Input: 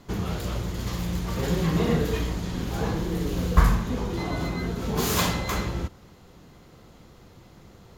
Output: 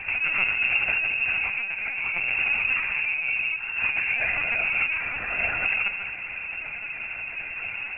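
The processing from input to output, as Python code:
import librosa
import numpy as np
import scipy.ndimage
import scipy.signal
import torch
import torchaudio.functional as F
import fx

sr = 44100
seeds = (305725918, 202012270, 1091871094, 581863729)

y = np.minimum(x, 2.0 * 10.0 ** (-19.5 / 20.0) - x)
y = fx.over_compress(y, sr, threshold_db=-35.0, ratio=-1.0)
y = fx.doubler(y, sr, ms=27.0, db=-11)
y = fx.echo_feedback(y, sr, ms=135, feedback_pct=22, wet_db=-11.0)
y = fx.freq_invert(y, sr, carrier_hz=2700)
y = fx.lpc_vocoder(y, sr, seeds[0], excitation='pitch_kept', order=10)
y = y * librosa.db_to_amplitude(7.5)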